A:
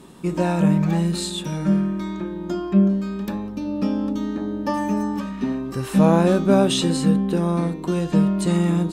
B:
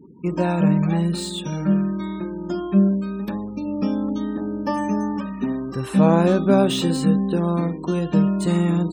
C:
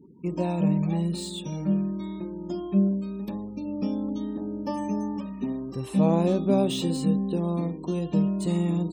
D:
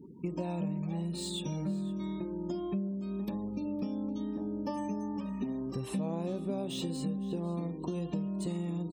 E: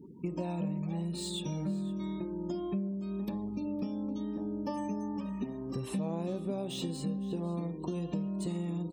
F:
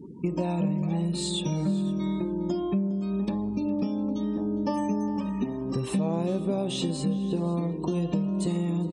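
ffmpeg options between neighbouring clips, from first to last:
-filter_complex "[0:a]afftfilt=real='re*gte(hypot(re,im),0.0126)':imag='im*gte(hypot(re,im),0.0126)':win_size=1024:overlap=0.75,acrossover=split=3300[s0][s1];[s1]asoftclip=type=tanh:threshold=0.0355[s2];[s0][s2]amix=inputs=2:normalize=0,highpass=50"
-af "equalizer=f=1500:w=2.4:g=-15,volume=0.531"
-af "acompressor=threshold=0.02:ratio=6,aecho=1:1:512:0.106,volume=1.19"
-af "bandreject=f=261.3:t=h:w=4,bandreject=f=522.6:t=h:w=4,bandreject=f=783.9:t=h:w=4,bandreject=f=1045.2:t=h:w=4,bandreject=f=1306.5:t=h:w=4,bandreject=f=1567.8:t=h:w=4,bandreject=f=1829.1:t=h:w=4,bandreject=f=2090.4:t=h:w=4,bandreject=f=2351.7:t=h:w=4,bandreject=f=2613:t=h:w=4,bandreject=f=2874.3:t=h:w=4,bandreject=f=3135.6:t=h:w=4,bandreject=f=3396.9:t=h:w=4,bandreject=f=3658.2:t=h:w=4,bandreject=f=3919.5:t=h:w=4,bandreject=f=4180.8:t=h:w=4,bandreject=f=4442.1:t=h:w=4,bandreject=f=4703.4:t=h:w=4,bandreject=f=4964.7:t=h:w=4,bandreject=f=5226:t=h:w=4,bandreject=f=5487.3:t=h:w=4,bandreject=f=5748.6:t=h:w=4,bandreject=f=6009.9:t=h:w=4,bandreject=f=6271.2:t=h:w=4,bandreject=f=6532.5:t=h:w=4"
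-filter_complex "[0:a]asplit=2[s0][s1];[s1]adelay=408.2,volume=0.158,highshelf=f=4000:g=-9.18[s2];[s0][s2]amix=inputs=2:normalize=0,aresample=22050,aresample=44100,volume=2.37"

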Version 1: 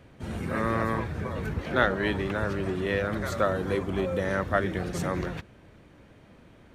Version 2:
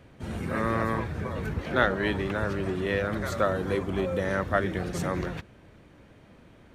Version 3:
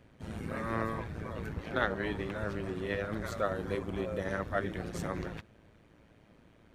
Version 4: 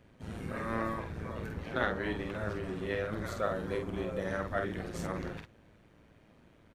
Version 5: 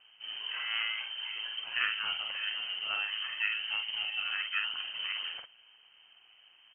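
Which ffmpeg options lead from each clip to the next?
-af anull
-af "tremolo=f=110:d=0.667,volume=0.631"
-filter_complex "[0:a]asplit=2[s0][s1];[s1]adelay=48,volume=0.562[s2];[s0][s2]amix=inputs=2:normalize=0,volume=0.841"
-af "lowpass=f=2700:t=q:w=0.5098,lowpass=f=2700:t=q:w=0.6013,lowpass=f=2700:t=q:w=0.9,lowpass=f=2700:t=q:w=2.563,afreqshift=-3200"

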